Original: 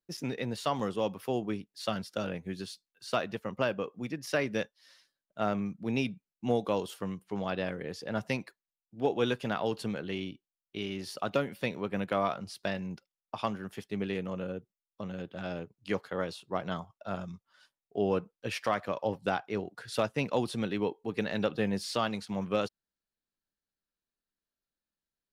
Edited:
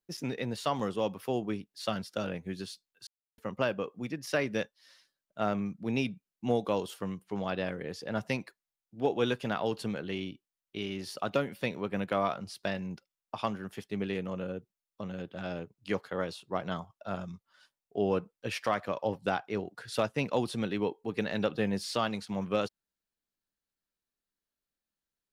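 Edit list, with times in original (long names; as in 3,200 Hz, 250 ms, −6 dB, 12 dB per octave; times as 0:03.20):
0:03.07–0:03.38: silence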